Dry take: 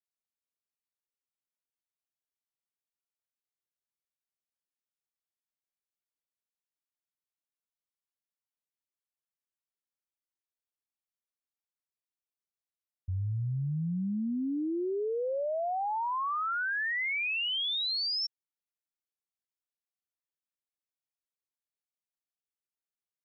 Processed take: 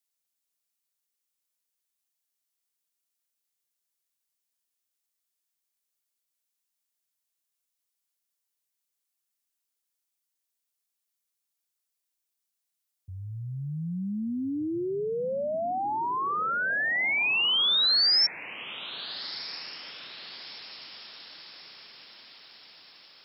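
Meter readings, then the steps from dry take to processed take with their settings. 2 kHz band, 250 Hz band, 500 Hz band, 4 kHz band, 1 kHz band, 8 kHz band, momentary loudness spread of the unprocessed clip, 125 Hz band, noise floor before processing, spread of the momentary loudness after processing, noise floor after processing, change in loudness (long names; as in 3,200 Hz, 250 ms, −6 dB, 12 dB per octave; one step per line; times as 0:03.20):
+5.0 dB, +1.0 dB, +2.0 dB, +9.0 dB, +3.0 dB, can't be measured, 5 LU, −2.5 dB, below −85 dBFS, 22 LU, −83 dBFS, +5.0 dB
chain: high-pass filter 150 Hz 12 dB per octave
high-shelf EQ 3,200 Hz +12 dB
feedback delay with all-pass diffusion 1,333 ms, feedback 53%, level −15 dB
level +1.5 dB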